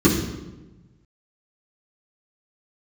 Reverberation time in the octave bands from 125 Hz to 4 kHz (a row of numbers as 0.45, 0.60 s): 1.7, 1.4, 1.2, 1.0, 0.85, 0.80 s